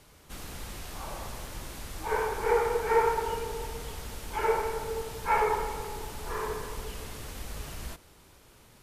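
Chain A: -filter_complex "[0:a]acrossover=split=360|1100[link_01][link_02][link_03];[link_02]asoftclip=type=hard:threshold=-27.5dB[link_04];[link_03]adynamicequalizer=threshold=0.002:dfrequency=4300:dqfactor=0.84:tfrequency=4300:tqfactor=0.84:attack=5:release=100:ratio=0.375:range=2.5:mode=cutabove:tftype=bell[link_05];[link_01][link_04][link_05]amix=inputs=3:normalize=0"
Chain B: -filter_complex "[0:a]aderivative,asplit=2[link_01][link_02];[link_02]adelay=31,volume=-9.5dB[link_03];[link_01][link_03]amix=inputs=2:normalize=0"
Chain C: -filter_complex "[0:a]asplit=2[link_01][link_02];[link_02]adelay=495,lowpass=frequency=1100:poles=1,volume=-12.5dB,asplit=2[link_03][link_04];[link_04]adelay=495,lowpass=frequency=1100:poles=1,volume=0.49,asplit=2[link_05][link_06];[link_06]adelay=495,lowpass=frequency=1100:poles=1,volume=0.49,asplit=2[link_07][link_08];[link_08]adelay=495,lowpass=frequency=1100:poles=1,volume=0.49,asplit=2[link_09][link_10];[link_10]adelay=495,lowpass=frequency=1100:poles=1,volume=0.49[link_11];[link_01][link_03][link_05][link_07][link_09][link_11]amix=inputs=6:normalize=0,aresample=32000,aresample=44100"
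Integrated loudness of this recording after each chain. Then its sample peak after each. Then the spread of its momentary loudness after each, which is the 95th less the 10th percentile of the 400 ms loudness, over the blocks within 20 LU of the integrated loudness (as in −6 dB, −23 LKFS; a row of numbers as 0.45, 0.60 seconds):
−33.5, −43.0, −32.0 LKFS; −17.0, −27.0, −13.0 dBFS; 14, 6, 15 LU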